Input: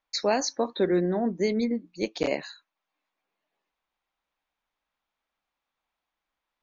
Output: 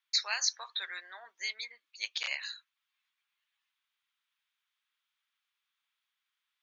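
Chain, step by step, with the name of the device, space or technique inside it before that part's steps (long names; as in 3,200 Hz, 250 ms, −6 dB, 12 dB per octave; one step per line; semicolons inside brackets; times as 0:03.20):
headphones lying on a table (high-pass filter 1,300 Hz 24 dB per octave; parametric band 3,300 Hz +6 dB 0.56 octaves)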